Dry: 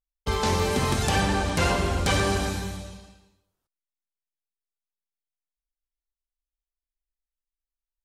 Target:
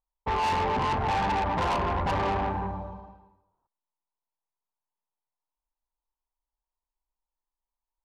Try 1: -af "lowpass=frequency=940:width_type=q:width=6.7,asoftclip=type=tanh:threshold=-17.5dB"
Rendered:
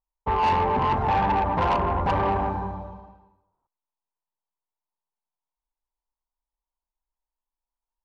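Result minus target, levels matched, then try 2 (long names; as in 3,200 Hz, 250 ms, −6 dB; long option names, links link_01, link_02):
soft clipping: distortion −5 dB
-af "lowpass=frequency=940:width_type=q:width=6.7,asoftclip=type=tanh:threshold=-24dB"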